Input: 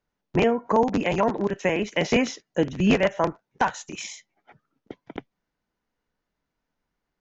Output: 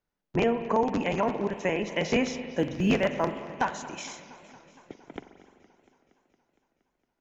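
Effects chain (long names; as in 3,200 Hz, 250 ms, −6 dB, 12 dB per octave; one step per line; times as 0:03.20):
0:02.43–0:03.63: floating-point word with a short mantissa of 6 bits
spring reverb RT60 2.1 s, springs 43 ms, chirp 20 ms, DRR 10 dB
feedback echo with a swinging delay time 232 ms, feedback 72%, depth 141 cents, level −19.5 dB
level −4.5 dB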